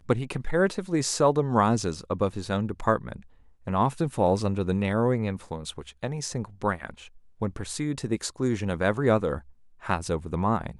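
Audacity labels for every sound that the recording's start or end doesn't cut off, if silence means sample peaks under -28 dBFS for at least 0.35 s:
3.670000	6.900000	sound
7.420000	9.380000	sound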